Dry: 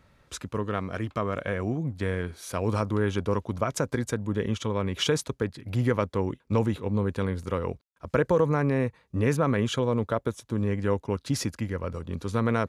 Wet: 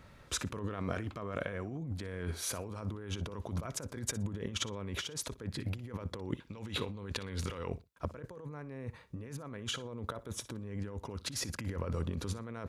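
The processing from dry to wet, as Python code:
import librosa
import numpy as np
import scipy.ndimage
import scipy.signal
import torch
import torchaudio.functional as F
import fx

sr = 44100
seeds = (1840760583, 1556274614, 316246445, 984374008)

y = fx.peak_eq(x, sr, hz=3500.0, db=10.5, octaves=2.3, at=(6.37, 7.69))
y = fx.over_compress(y, sr, threshold_db=-36.0, ratio=-1.0)
y = fx.echo_feedback(y, sr, ms=60, feedback_pct=18, wet_db=-17.5)
y = y * librosa.db_to_amplitude(-4.0)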